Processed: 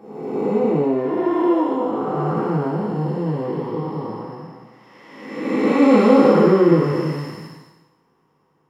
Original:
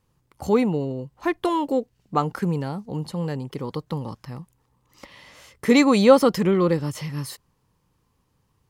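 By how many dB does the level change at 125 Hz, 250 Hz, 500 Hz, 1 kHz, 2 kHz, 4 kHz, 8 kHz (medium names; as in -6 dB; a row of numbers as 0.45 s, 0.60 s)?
+3.5 dB, +5.0 dB, +4.5 dB, +3.5 dB, 0.0 dB, -5.0 dB, under -10 dB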